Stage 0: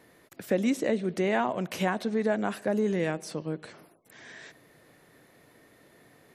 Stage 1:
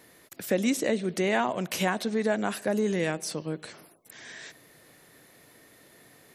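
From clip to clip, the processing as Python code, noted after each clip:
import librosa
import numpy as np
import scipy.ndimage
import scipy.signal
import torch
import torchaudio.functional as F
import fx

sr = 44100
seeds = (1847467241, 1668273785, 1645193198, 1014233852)

y = fx.high_shelf(x, sr, hz=3000.0, db=9.5)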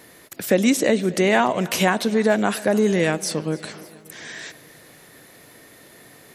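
y = fx.echo_feedback(x, sr, ms=291, feedback_pct=59, wet_db=-21.0)
y = y * librosa.db_to_amplitude(8.0)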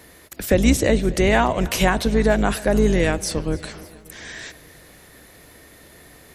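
y = fx.octave_divider(x, sr, octaves=2, level_db=0.0)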